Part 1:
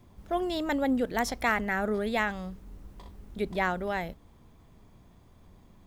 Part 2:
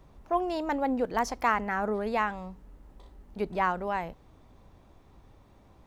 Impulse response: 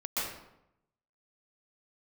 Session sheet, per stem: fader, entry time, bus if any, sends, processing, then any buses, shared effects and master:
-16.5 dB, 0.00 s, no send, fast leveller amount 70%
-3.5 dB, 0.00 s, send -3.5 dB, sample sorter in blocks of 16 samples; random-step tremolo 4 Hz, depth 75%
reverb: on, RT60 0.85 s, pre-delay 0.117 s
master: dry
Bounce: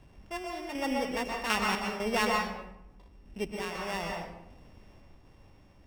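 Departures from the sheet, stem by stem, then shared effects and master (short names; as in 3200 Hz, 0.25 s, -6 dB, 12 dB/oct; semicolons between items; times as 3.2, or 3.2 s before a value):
stem 1 -16.5 dB -> -28.5 dB; master: extra high shelf 9400 Hz -11.5 dB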